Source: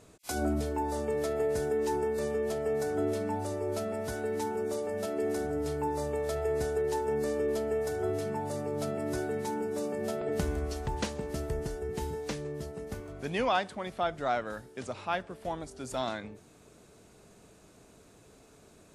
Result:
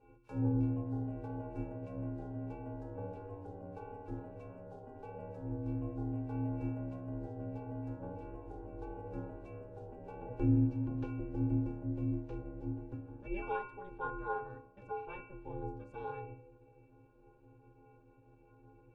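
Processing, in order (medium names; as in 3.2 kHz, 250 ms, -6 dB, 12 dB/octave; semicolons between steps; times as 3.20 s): pitch-class resonator D#, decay 0.59 s; ring modulator 190 Hz; de-hum 83.64 Hz, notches 19; trim +15 dB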